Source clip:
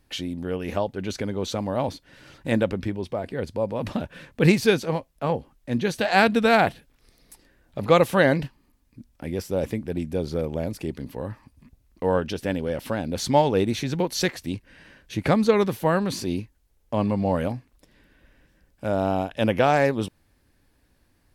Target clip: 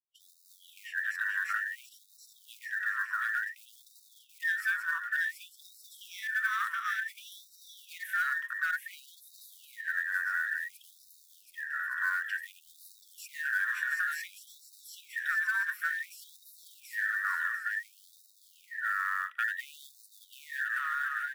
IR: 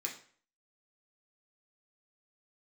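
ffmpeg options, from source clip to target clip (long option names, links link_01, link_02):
-filter_complex "[0:a]afftfilt=real='real(if(between(b,1,1012),(2*floor((b-1)/92)+1)*92-b,b),0)':imag='imag(if(between(b,1,1012),(2*floor((b-1)/92)+1)*92-b,b),0)*if(between(b,1,1012),-1,1)':win_size=2048:overlap=0.75,acrossover=split=280|2200[link_01][link_02][link_03];[link_01]acrusher=bits=4:dc=4:mix=0:aa=0.000001[link_04];[link_02]asoftclip=type=hard:threshold=-17.5dB[link_05];[link_04][link_05][link_03]amix=inputs=3:normalize=0,equalizer=frequency=360:width_type=o:width=0.44:gain=5,aecho=1:1:730|1168|1431|1588|1683:0.631|0.398|0.251|0.158|0.1,flanger=delay=1.8:depth=5.6:regen=74:speed=0.46:shape=triangular,firequalizer=gain_entry='entry(190,0);entry(270,-16);entry(730,-9);entry(1600,-2);entry(4100,-23);entry(7600,-17);entry(13000,-8)':delay=0.05:min_phase=1,acrusher=bits=8:mode=log:mix=0:aa=0.000001,areverse,acompressor=mode=upward:threshold=-43dB:ratio=2.5,areverse,agate=range=-44dB:threshold=-45dB:ratio=16:detection=peak,acrossover=split=610|2900[link_06][link_07][link_08];[link_06]acompressor=threshold=-49dB:ratio=4[link_09];[link_07]acompressor=threshold=-40dB:ratio=4[link_10];[link_08]acompressor=threshold=-49dB:ratio=4[link_11];[link_09][link_10][link_11]amix=inputs=3:normalize=0,afftfilt=real='re*gte(b*sr/1024,940*pow(3700/940,0.5+0.5*sin(2*PI*0.56*pts/sr)))':imag='im*gte(b*sr/1024,940*pow(3700/940,0.5+0.5*sin(2*PI*0.56*pts/sr)))':win_size=1024:overlap=0.75,volume=8dB"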